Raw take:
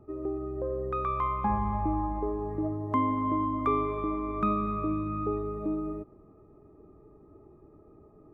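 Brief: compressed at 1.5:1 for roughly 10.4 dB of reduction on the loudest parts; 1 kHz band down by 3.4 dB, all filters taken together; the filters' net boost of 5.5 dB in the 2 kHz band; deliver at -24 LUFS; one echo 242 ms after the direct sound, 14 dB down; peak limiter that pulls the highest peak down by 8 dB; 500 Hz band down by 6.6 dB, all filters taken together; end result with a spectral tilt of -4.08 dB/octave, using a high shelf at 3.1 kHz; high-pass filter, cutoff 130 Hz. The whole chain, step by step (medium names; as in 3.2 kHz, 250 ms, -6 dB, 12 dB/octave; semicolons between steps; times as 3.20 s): high-pass 130 Hz; peaking EQ 500 Hz -8.5 dB; peaking EQ 1 kHz -4.5 dB; peaking EQ 2 kHz +6.5 dB; treble shelf 3.1 kHz +3 dB; compression 1.5:1, threshold -55 dBFS; peak limiter -35.5 dBFS; delay 242 ms -14 dB; trim +20.5 dB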